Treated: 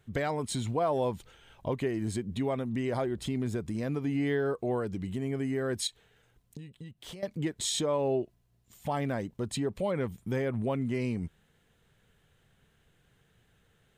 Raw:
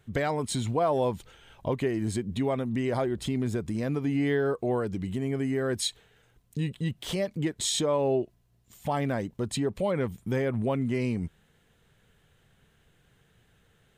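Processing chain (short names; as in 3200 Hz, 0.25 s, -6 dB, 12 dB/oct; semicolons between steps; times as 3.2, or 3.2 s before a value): 5.87–7.23 compressor 12:1, threshold -39 dBFS, peak gain reduction 15 dB; gain -3 dB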